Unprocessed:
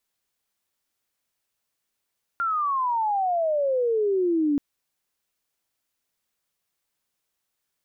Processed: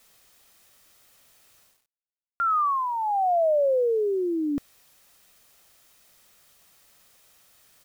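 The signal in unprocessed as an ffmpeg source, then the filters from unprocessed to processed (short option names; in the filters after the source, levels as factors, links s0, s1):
-f lavfi -i "aevalsrc='pow(10,(-22+3*t/2.18)/20)*sin(2*PI*1400*2.18/log(280/1400)*(exp(log(280/1400)*t/2.18)-1))':d=2.18:s=44100"
-af "aecho=1:1:1.6:0.35,areverse,acompressor=mode=upward:threshold=0.00708:ratio=2.5,areverse,acrusher=bits=9:mix=0:aa=0.000001"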